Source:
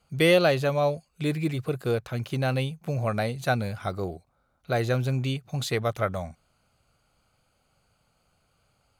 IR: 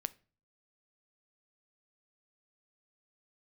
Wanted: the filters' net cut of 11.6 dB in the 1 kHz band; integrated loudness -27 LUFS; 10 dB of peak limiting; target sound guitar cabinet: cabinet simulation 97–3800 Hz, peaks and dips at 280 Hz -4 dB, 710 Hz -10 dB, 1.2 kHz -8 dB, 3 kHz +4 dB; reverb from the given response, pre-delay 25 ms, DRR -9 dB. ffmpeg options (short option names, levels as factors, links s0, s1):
-filter_complex "[0:a]equalizer=f=1000:t=o:g=-7,alimiter=limit=0.0944:level=0:latency=1,asplit=2[s0][s1];[1:a]atrim=start_sample=2205,adelay=25[s2];[s1][s2]afir=irnorm=-1:irlink=0,volume=3.16[s3];[s0][s3]amix=inputs=2:normalize=0,highpass=97,equalizer=f=280:t=q:w=4:g=-4,equalizer=f=710:t=q:w=4:g=-10,equalizer=f=1200:t=q:w=4:g=-8,equalizer=f=3000:t=q:w=4:g=4,lowpass=f=3800:w=0.5412,lowpass=f=3800:w=1.3066,volume=0.596"